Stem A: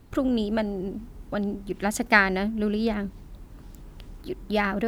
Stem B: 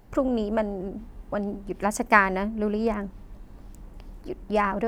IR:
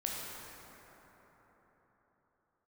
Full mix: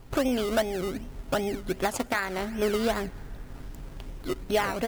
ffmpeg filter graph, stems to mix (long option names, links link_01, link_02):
-filter_complex "[0:a]equalizer=frequency=240:width_type=o:width=1.4:gain=-12.5,volume=-0.5dB,asplit=2[link_01][link_02];[link_02]volume=-22.5dB[link_03];[1:a]acompressor=threshold=-31dB:ratio=2,aecho=1:1:7.5:0.63,acrusher=samples=21:mix=1:aa=0.000001:lfo=1:lforange=12.6:lforate=2.6,volume=1dB[link_04];[2:a]atrim=start_sample=2205[link_05];[link_03][link_05]afir=irnorm=-1:irlink=0[link_06];[link_01][link_04][link_06]amix=inputs=3:normalize=0,alimiter=limit=-14dB:level=0:latency=1:release=490"